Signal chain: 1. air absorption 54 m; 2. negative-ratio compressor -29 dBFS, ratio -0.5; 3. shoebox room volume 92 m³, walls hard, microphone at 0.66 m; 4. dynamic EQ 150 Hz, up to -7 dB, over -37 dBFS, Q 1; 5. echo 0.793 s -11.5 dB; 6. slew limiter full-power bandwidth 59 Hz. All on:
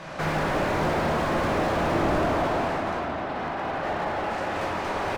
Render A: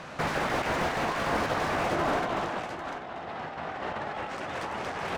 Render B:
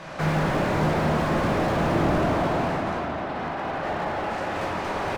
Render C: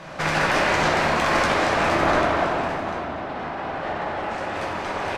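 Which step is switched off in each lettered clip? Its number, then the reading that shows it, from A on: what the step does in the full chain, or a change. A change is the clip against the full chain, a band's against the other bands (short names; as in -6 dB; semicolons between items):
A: 3, momentary loudness spread change +3 LU; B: 4, 125 Hz band +5.0 dB; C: 6, distortion 0 dB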